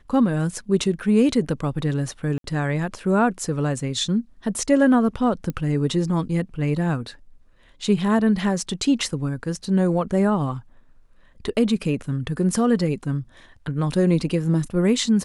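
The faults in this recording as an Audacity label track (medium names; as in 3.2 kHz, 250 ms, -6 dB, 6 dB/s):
2.380000	2.440000	dropout 62 ms
5.500000	5.500000	pop -16 dBFS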